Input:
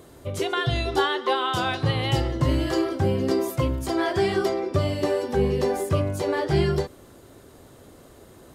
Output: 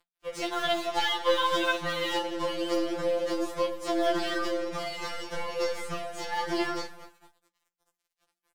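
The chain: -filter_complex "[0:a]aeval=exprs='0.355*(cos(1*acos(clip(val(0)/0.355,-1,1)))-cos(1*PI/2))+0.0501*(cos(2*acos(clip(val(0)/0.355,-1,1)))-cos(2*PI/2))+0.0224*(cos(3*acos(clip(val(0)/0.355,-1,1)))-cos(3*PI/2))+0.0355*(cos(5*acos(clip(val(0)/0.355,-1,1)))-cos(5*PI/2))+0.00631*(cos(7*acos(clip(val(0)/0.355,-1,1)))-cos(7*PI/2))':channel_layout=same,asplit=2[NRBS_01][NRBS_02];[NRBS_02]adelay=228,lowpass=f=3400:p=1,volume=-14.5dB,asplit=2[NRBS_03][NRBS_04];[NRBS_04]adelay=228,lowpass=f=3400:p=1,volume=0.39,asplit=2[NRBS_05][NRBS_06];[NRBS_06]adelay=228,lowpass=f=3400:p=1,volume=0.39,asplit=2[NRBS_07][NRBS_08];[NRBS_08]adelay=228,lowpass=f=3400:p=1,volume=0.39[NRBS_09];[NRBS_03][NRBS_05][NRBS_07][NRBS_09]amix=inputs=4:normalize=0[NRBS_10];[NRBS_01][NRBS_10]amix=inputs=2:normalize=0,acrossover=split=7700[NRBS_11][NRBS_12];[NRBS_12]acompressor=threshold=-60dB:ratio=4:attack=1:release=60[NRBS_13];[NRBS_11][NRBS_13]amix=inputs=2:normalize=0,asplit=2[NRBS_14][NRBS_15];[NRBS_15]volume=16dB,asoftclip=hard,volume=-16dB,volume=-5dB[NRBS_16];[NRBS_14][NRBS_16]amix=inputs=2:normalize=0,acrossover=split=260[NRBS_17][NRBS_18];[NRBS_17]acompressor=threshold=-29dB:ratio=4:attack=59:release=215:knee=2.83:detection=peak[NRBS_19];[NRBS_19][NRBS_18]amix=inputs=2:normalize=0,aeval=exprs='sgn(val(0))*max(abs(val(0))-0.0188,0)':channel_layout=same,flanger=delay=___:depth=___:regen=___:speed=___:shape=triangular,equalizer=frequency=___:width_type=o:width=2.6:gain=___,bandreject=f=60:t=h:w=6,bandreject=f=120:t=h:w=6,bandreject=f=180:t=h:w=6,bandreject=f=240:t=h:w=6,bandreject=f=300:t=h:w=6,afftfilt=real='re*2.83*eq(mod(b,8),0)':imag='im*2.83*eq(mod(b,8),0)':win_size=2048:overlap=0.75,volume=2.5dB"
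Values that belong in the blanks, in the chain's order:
6.6, 10, 76, 0.55, 130, -10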